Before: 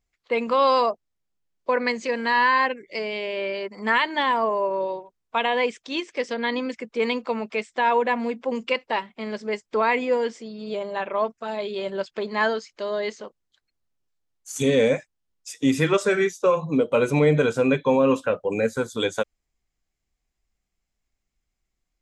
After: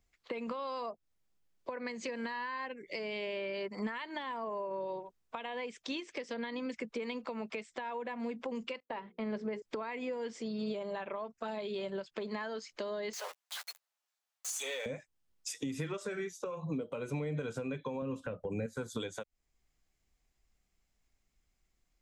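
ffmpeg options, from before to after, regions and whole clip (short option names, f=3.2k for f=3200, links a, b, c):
-filter_complex "[0:a]asettb=1/sr,asplit=3[a][b][c];[a]atrim=end=8.804[d];[b]atrim=start=8.8:end=9.62,asetpts=PTS-STARTPTS,afade=t=in:d=0.004:c=qsin,afade=t=out:st=0.816:d=0.004:c=qsin,agate=range=-33dB:threshold=-46dB:ratio=3:release=100:detection=peak,lowpass=f=1.4k:p=1,bandreject=f=60:t=h:w=6,bandreject=f=120:t=h:w=6,bandreject=f=180:t=h:w=6,bandreject=f=240:t=h:w=6,bandreject=f=300:t=h:w=6,bandreject=f=360:t=h:w=6,bandreject=f=420:t=h:w=6,bandreject=f=480:t=h:w=6[e];[c]atrim=start=9.616[f];[d][e]acrossfade=d=0.004:c1=hsin:c2=qsin[g];[g][f]acrossfade=d=0.004:c1=qsin:c2=hsin,asettb=1/sr,asplit=3[h][i][j];[h]atrim=end=13.134[k];[i]atrim=start=13.13:end=14.86,asetpts=PTS-STARTPTS,afade=t=in:d=0.004:c=qsin,afade=t=out:st=1.726:d=0.004:c=qsin,aeval=exprs='val(0)+0.5*0.0168*sgn(val(0))':c=same,highpass=f=660:w=0.5412,highpass=f=660:w=1.3066,asplit=2[l][m];[m]adelay=12,volume=-12dB[n];[l][n]amix=inputs=2:normalize=0,atrim=end_sample=76293[o];[j]atrim=start=14.856[p];[k][o]acrossfade=d=0.004:c1=hsin:c2=qsin[q];[q][p]acrossfade=d=0.004:c1=qsin:c2=hsin,asettb=1/sr,asplit=3[r][s][t];[r]atrim=end=18.024[u];[s]atrim=start=18.02:end=18.66,asetpts=PTS-STARTPTS,afade=t=in:d=0.004:c=qsin,afade=t=out:st=0.636:d=0.004:c=qsin,lowshelf=f=270:g=12,acompressor=mode=upward:threshold=-26dB:ratio=2.5:attack=3.2:release=140:knee=2.83:detection=peak[v];[t]atrim=start=18.656[w];[u][v]acrossfade=d=0.004:c1=hsin:c2=qsin[x];[x][w]acrossfade=d=0.004:c1=qsin:c2=hsin,acompressor=threshold=-28dB:ratio=6,alimiter=level_in=0.5dB:limit=-24dB:level=0:latency=1:release=485,volume=-0.5dB,acrossover=split=180[y][z];[z]acompressor=threshold=-41dB:ratio=2.5[aa];[y][aa]amix=inputs=2:normalize=0,volume=2dB"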